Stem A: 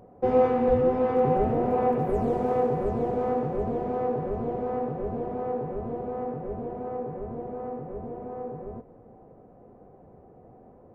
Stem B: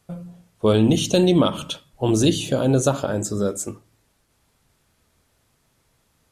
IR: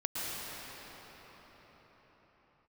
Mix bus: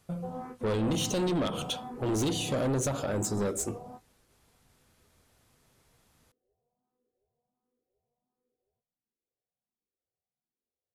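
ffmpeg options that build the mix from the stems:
-filter_complex "[0:a]asplit=2[a][b];[b]afreqshift=1.4[c];[a][c]amix=inputs=2:normalize=1,volume=-12.5dB[d];[1:a]alimiter=limit=-12dB:level=0:latency=1:release=198,volume=-1.5dB,asplit=2[e][f];[f]apad=whole_len=482700[g];[d][g]sidechaingate=range=-33dB:threshold=-59dB:ratio=16:detection=peak[h];[h][e]amix=inputs=2:normalize=0,asoftclip=type=tanh:threshold=-25dB"

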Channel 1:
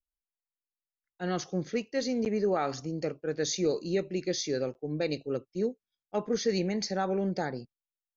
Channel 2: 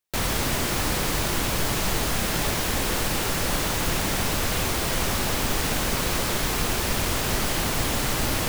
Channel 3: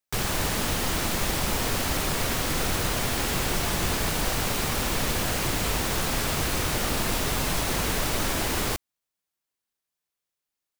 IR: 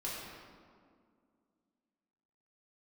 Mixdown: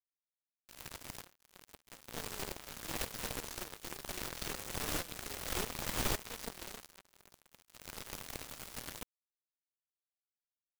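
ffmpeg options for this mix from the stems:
-filter_complex "[0:a]highpass=320,volume=-0.5dB,asplit=2[a][b];[1:a]bandreject=f=50:t=h:w=6,bandreject=f=100:t=h:w=6,bandreject=f=150:t=h:w=6,bandreject=f=200:t=h:w=6,bandreject=f=250:t=h:w=6,bandreject=f=300:t=h:w=6,bandreject=f=350:t=h:w=6,bandreject=f=400:t=h:w=6,bandreject=f=450:t=h:w=6,adelay=550,volume=-7dB,afade=t=in:st=1.76:d=0.73:silence=0.375837,afade=t=out:st=6.65:d=0.26:silence=0.421697[c];[2:a]equalizer=f=130:t=o:w=2:g=5.5,alimiter=limit=-23.5dB:level=0:latency=1:release=362,adelay=650,volume=-11.5dB[d];[b]apad=whole_len=398310[e];[c][e]sidechaincompress=threshold=-32dB:ratio=20:attack=6:release=1120[f];[a][d]amix=inputs=2:normalize=0,acrossover=split=120[g][h];[h]acompressor=threshold=-32dB:ratio=3[i];[g][i]amix=inputs=2:normalize=0,alimiter=level_in=12dB:limit=-24dB:level=0:latency=1:release=25,volume=-12dB,volume=0dB[j];[f][j]amix=inputs=2:normalize=0,acrusher=bits=4:mix=0:aa=0.5"

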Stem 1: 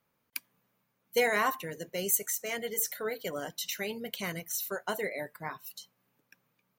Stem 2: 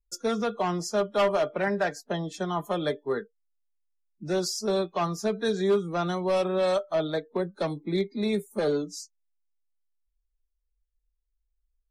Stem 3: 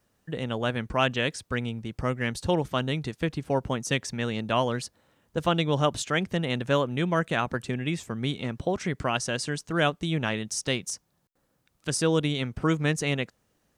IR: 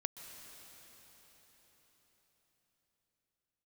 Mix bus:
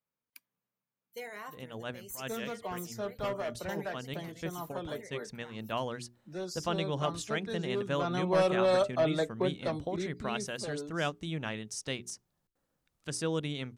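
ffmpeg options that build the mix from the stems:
-filter_complex "[0:a]volume=-16.5dB,asplit=2[a][b];[1:a]adelay=2050,volume=-1.5dB,afade=t=in:st=7.84:d=0.52:silence=0.316228,afade=t=out:st=9.36:d=0.79:silence=0.266073[c];[2:a]bandreject=f=60:t=h:w=6,bandreject=f=120:t=h:w=6,bandreject=f=180:t=h:w=6,bandreject=f=240:t=h:w=6,bandreject=f=300:t=h:w=6,bandreject=f=360:t=h:w=6,bandreject=f=420:t=h:w=6,adelay=1200,volume=-8.5dB[d];[b]apad=whole_len=660469[e];[d][e]sidechaincompress=threshold=-60dB:ratio=8:attack=34:release=105[f];[a][c][f]amix=inputs=3:normalize=0"

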